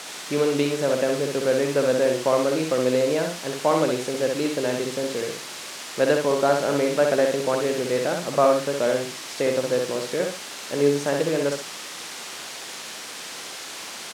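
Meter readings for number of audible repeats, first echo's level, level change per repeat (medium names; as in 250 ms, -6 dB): 2, -4.0 dB, -11.5 dB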